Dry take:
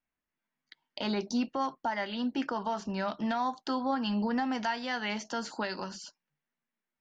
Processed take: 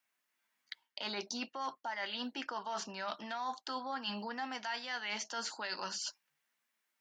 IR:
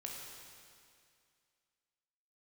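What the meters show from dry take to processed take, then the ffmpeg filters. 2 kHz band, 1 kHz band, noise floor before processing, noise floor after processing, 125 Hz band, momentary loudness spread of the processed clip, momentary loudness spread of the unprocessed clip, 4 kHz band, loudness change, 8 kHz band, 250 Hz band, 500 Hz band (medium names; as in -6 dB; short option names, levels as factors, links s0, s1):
-3.5 dB, -6.5 dB, under -85 dBFS, -84 dBFS, under -10 dB, 3 LU, 7 LU, -0.5 dB, -7.0 dB, no reading, -14.5 dB, -9.5 dB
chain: -af "highpass=f=1400:p=1,areverse,acompressor=threshold=0.00447:ratio=6,areverse,volume=3.16"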